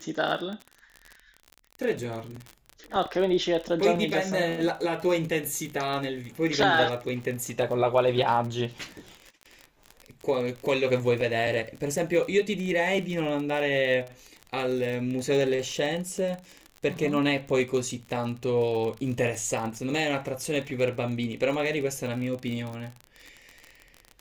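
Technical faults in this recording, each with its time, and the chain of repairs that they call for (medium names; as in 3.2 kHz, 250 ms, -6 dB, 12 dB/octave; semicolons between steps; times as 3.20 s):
crackle 38 per s -32 dBFS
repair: de-click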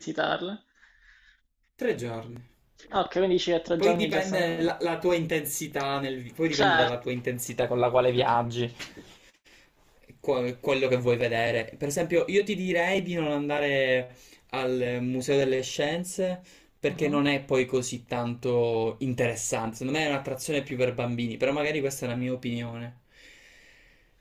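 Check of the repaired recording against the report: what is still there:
nothing left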